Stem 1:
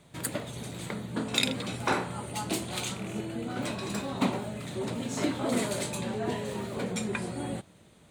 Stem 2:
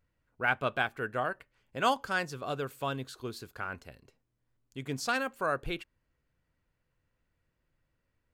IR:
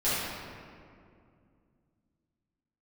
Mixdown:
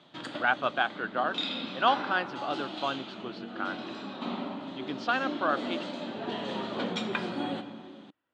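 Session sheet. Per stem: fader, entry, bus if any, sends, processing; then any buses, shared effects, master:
+2.5 dB, 0.00 s, send −19.5 dB, parametric band 730 Hz −3.5 dB 0.44 octaves; automatic ducking −19 dB, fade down 1.00 s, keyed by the second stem
+1.5 dB, 0.00 s, no send, bass and treble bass −1 dB, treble −8 dB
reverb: on, RT60 2.3 s, pre-delay 5 ms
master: loudspeaker in its box 270–4,700 Hz, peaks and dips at 300 Hz +5 dB, 440 Hz −7 dB, 770 Hz +4 dB, 1,300 Hz +3 dB, 2,200 Hz −6 dB, 3,200 Hz +7 dB

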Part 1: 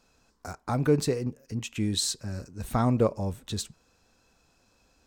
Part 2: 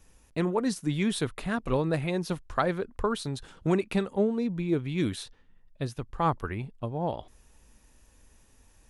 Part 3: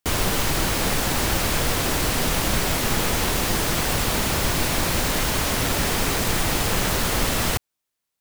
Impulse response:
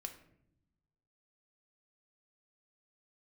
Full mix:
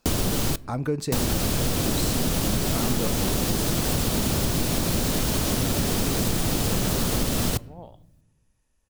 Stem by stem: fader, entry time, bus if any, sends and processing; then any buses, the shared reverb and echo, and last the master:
−1.0 dB, 0.00 s, no send, no processing
−16.0 dB, 0.75 s, send −4.5 dB, no processing
+2.5 dB, 0.00 s, muted 0:00.56–0:01.12, send −11 dB, octave-band graphic EQ 125/250/1,000/2,000 Hz +4/+5/−4/−7 dB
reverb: on, pre-delay 4 ms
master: downward compressor 4 to 1, threshold −21 dBFS, peak gain reduction 8.5 dB

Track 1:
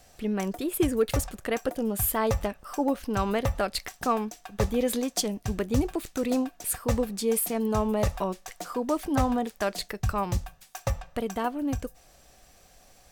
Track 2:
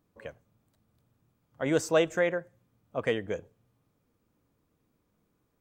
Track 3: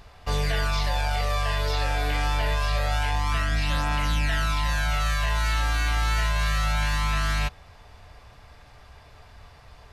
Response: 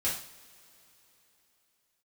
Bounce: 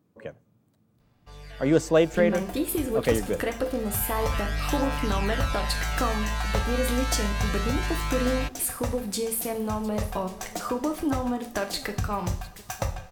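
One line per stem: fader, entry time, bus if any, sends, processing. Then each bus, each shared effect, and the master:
+2.5 dB, 1.95 s, send −8.5 dB, echo send −17 dB, downward compressor 6 to 1, threshold −30 dBFS, peak gain reduction 11 dB
0.0 dB, 0.00 s, no send, no echo send, high-pass filter 140 Hz; low-shelf EQ 410 Hz +11 dB
−12.0 dB, 1.00 s, no send, no echo send, automatic gain control gain up to 7.5 dB; automatic ducking −15 dB, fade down 2.00 s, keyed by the second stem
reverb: on, pre-delay 3 ms
echo: single-tap delay 707 ms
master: no processing

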